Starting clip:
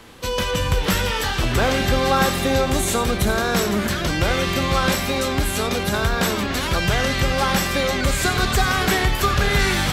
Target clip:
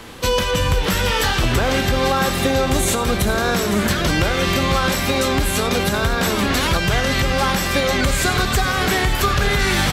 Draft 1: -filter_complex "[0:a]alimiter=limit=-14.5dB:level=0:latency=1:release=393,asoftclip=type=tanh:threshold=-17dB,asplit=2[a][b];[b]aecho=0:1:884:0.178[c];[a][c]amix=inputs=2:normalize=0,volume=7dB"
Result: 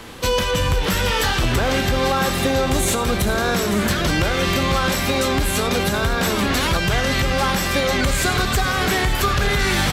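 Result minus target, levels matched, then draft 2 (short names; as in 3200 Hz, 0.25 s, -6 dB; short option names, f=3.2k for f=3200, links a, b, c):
soft clip: distortion +21 dB
-filter_complex "[0:a]alimiter=limit=-14.5dB:level=0:latency=1:release=393,asoftclip=type=tanh:threshold=-5.5dB,asplit=2[a][b];[b]aecho=0:1:884:0.178[c];[a][c]amix=inputs=2:normalize=0,volume=7dB"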